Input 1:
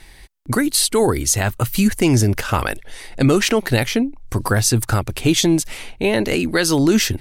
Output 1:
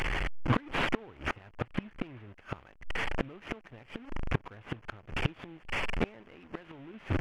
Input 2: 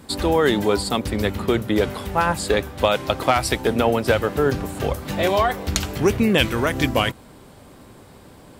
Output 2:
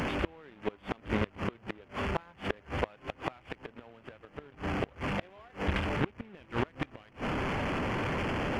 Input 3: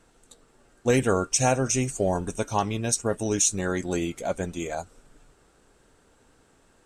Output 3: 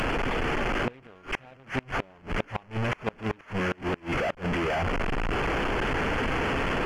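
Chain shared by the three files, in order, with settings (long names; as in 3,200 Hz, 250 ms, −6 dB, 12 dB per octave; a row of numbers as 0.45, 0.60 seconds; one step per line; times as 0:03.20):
linear delta modulator 16 kbit/s, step −17 dBFS
in parallel at −1 dB: brickwall limiter −12 dBFS
on the sum: power curve on the samples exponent 1.4
gate with flip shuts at −8 dBFS, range −28 dB
normalise the peak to −12 dBFS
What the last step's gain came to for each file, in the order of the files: −7.0, −8.0, −4.0 decibels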